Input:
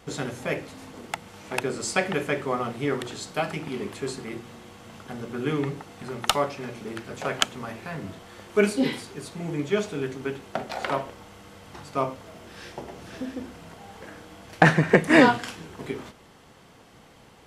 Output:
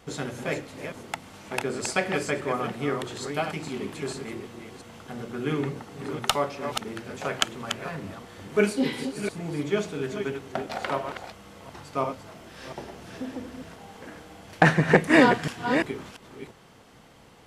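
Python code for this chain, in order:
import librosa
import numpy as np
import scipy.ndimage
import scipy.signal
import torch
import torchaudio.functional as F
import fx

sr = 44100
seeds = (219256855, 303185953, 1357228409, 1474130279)

y = fx.reverse_delay(x, sr, ms=344, wet_db=-7)
y = F.gain(torch.from_numpy(y), -1.5).numpy()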